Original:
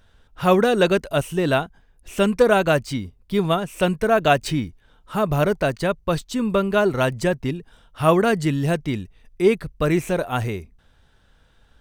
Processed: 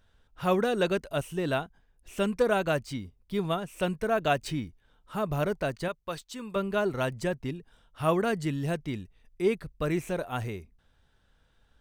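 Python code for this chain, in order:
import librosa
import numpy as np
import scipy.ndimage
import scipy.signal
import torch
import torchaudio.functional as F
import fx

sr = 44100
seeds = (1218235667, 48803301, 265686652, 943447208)

y = fx.low_shelf(x, sr, hz=410.0, db=-11.5, at=(5.88, 6.56))
y = F.gain(torch.from_numpy(y), -9.0).numpy()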